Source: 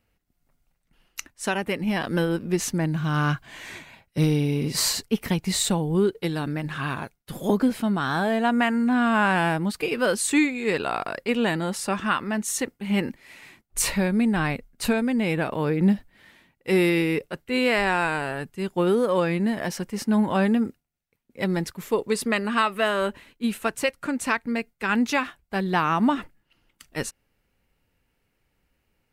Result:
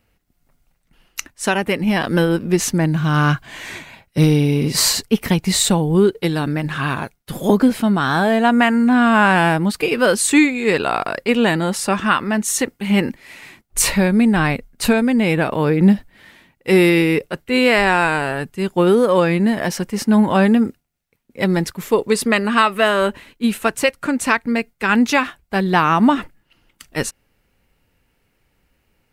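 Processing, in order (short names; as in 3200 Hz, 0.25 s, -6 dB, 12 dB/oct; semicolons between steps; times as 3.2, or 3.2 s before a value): 12.6–13.08 mismatched tape noise reduction encoder only; gain +7.5 dB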